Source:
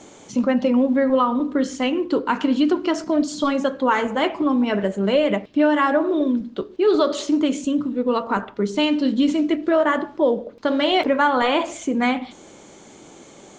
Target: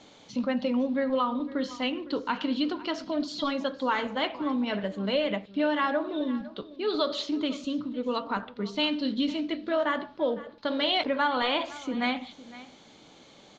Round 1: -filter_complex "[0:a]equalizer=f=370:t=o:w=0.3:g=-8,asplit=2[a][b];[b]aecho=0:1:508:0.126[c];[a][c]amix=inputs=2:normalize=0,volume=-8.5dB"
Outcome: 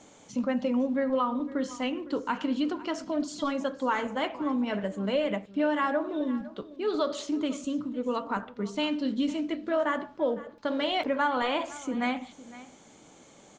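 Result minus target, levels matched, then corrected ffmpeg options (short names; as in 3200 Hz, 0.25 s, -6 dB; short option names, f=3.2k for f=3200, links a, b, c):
4000 Hz band -5.5 dB
-filter_complex "[0:a]lowpass=f=4.1k:t=q:w=2.8,equalizer=f=370:t=o:w=0.3:g=-8,asplit=2[a][b];[b]aecho=0:1:508:0.126[c];[a][c]amix=inputs=2:normalize=0,volume=-8.5dB"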